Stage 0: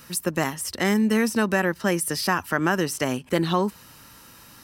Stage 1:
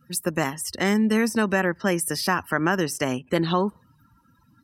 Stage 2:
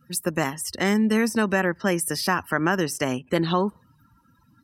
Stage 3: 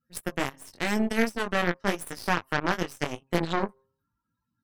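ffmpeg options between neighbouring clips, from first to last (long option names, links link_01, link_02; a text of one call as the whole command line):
ffmpeg -i in.wav -af "afftdn=noise_reduction=29:noise_floor=-43" out.wav
ffmpeg -i in.wav -af anull out.wav
ffmpeg -i in.wav -af "bandreject=frequency=133.6:width_type=h:width=4,bandreject=frequency=267.2:width_type=h:width=4,bandreject=frequency=400.8:width_type=h:width=4,bandreject=frequency=534.4:width_type=h:width=4,bandreject=frequency=668:width_type=h:width=4,bandreject=frequency=801.6:width_type=h:width=4,bandreject=frequency=935.2:width_type=h:width=4,bandreject=frequency=1068.8:width_type=h:width=4,bandreject=frequency=1202.4:width_type=h:width=4,flanger=delay=17:depth=5.8:speed=0.9,aeval=exprs='0.335*(cos(1*acos(clip(val(0)/0.335,-1,1)))-cos(1*PI/2))+0.0237*(cos(6*acos(clip(val(0)/0.335,-1,1)))-cos(6*PI/2))+0.0422*(cos(7*acos(clip(val(0)/0.335,-1,1)))-cos(7*PI/2))':channel_layout=same" out.wav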